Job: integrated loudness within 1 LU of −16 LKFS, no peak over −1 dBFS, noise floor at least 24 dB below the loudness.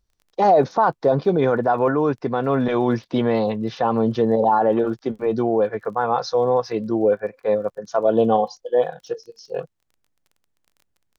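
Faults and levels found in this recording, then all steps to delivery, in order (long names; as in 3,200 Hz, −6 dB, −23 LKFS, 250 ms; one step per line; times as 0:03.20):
crackle rate 21 per second; integrated loudness −20.5 LKFS; sample peak −6.0 dBFS; target loudness −16.0 LKFS
→ click removal
level +4.5 dB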